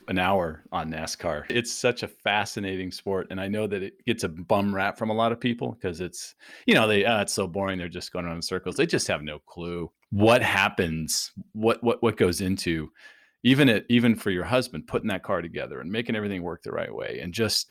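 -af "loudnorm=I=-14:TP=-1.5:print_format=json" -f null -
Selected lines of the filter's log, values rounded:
"input_i" : "-26.1",
"input_tp" : "-7.0",
"input_lra" : "5.0",
"input_thresh" : "-36.3",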